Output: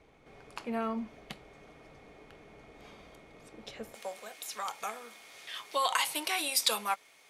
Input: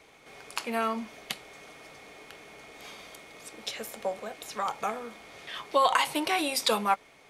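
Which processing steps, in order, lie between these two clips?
tilt EQ -3 dB/octave, from 3.94 s +3 dB/octave; trim -6.5 dB

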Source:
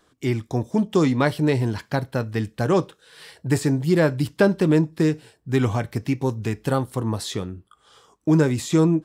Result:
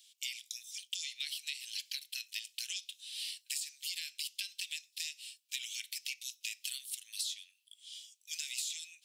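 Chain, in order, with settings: steep high-pass 2.6 kHz 48 dB/octave; compression 10:1, threshold -43 dBFS, peak gain reduction 15 dB; trim +7.5 dB

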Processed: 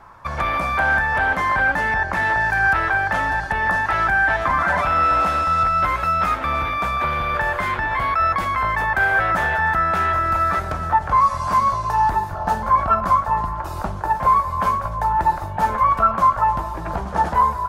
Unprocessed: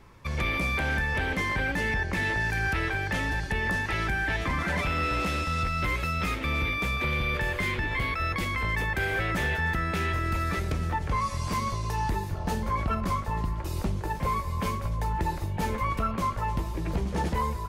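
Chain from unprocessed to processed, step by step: high-order bell 1 kHz +14.5 dB

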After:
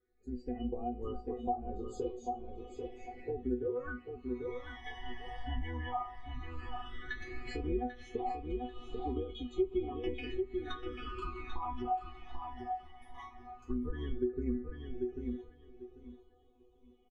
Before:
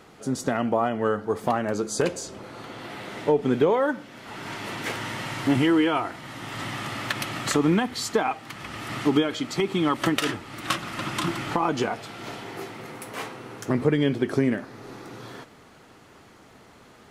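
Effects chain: octave divider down 2 oct, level -2 dB; treble shelf 4.5 kHz -8.5 dB; chord resonator B3 fifth, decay 0.29 s; low-pass that closes with the level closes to 1.4 kHz, closed at -34 dBFS; phase shifter stages 12, 0.14 Hz, lowest notch 410–1900 Hz; on a send: feedback delay 791 ms, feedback 28%, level -6.5 dB; on the sum: level rider gain up to 4 dB; comb 2.4 ms, depth 48%; compression 3:1, threshold -39 dBFS, peak gain reduction 9 dB; spectral contrast expander 1.5:1; trim +6 dB

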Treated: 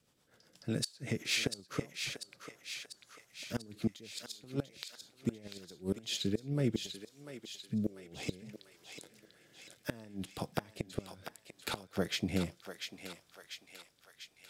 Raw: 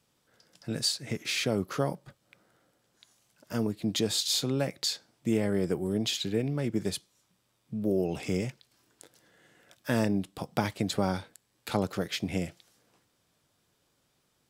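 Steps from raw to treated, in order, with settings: rotary cabinet horn 8 Hz, later 0.65 Hz, at 5.23 s; inverted gate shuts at -21 dBFS, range -25 dB; thinning echo 693 ms, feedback 64%, high-pass 880 Hz, level -6 dB; trim +1 dB

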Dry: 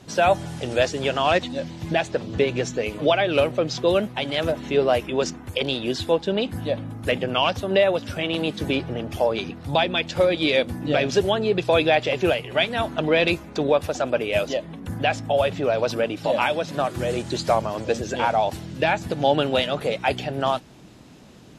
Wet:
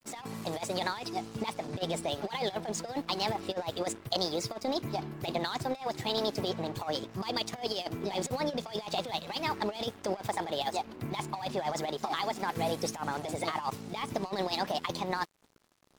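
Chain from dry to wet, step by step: speed mistake 33 rpm record played at 45 rpm; compressor with a negative ratio -23 dBFS, ratio -0.5; crossover distortion -40 dBFS; trim -7.5 dB

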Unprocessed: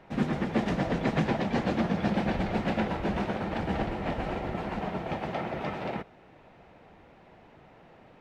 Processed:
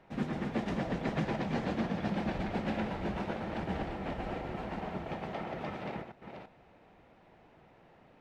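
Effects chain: chunks repeated in reverse 340 ms, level -7 dB; trim -6.5 dB

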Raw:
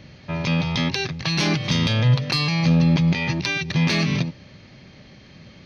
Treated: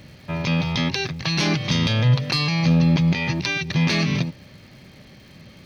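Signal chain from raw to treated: crackle 410 per s -46 dBFS

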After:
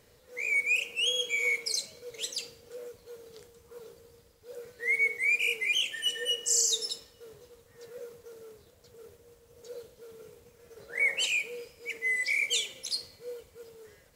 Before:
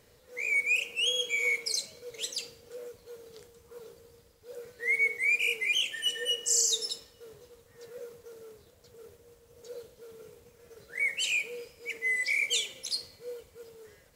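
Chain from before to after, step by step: 10.77–11.25 s: peaking EQ 700 Hz +6.5 dB -> +13 dB 2.1 oct

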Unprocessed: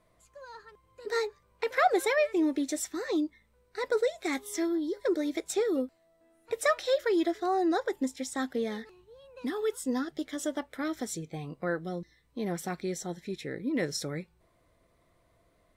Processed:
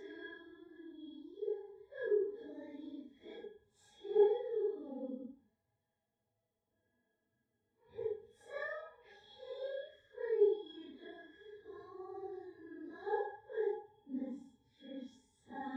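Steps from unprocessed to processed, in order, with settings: pitch-class resonator G#, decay 0.13 s; Paulstretch 4.1×, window 0.05 s, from 4.57 s; trim +1 dB

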